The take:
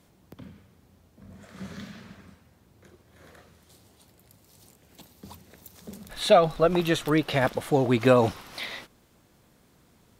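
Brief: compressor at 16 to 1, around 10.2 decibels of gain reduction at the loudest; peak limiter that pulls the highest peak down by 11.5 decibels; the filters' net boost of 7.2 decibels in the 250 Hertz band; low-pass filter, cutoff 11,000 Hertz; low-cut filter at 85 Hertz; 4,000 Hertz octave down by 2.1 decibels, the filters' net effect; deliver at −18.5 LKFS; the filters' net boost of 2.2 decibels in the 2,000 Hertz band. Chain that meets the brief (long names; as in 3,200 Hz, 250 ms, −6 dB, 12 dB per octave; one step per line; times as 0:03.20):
high-pass filter 85 Hz
low-pass filter 11,000 Hz
parametric band 250 Hz +9 dB
parametric band 2,000 Hz +3.5 dB
parametric band 4,000 Hz −3.5 dB
downward compressor 16 to 1, threshold −20 dBFS
level +16 dB
brickwall limiter −6 dBFS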